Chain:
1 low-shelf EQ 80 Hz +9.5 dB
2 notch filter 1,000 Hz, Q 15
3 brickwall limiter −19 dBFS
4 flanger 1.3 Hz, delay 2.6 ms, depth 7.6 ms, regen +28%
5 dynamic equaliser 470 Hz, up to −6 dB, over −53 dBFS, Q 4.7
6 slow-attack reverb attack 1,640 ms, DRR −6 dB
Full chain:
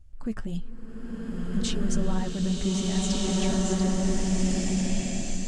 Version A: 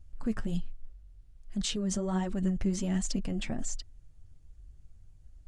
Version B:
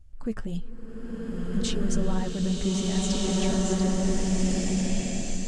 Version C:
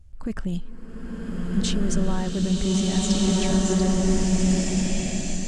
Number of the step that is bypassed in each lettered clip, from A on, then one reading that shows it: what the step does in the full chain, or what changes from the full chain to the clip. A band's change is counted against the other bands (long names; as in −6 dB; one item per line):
6, change in momentary loudness spread −2 LU
5, 500 Hz band +1.5 dB
4, change in integrated loudness +4.5 LU